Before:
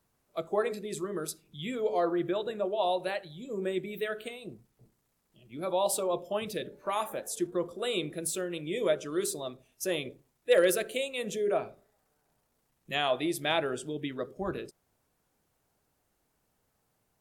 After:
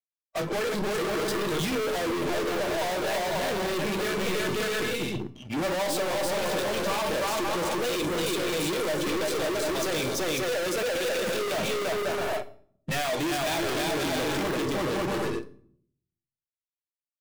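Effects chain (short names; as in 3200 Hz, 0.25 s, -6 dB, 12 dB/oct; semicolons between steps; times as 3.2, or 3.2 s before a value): LPF 4300 Hz 12 dB/oct; bouncing-ball echo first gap 0.34 s, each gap 0.6×, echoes 5; compressor 4:1, threshold -34 dBFS, peak gain reduction 13 dB; fuzz box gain 53 dB, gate -57 dBFS; spectral noise reduction 16 dB; hard clip -20 dBFS, distortion -13 dB; resonator 580 Hz, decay 0.43 s, mix 60%; shoebox room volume 900 m³, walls furnished, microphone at 0.55 m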